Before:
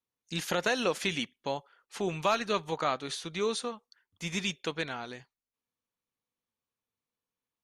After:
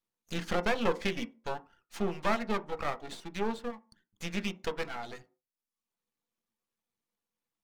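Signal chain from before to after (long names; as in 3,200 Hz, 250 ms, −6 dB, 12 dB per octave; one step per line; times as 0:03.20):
reverb reduction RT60 0.72 s
treble cut that deepens with the level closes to 2,500 Hz, closed at −30 dBFS
half-wave rectification
speech leveller 2 s
on a send: convolution reverb RT60 0.35 s, pre-delay 3 ms, DRR 7 dB
on the sum: level +1.5 dB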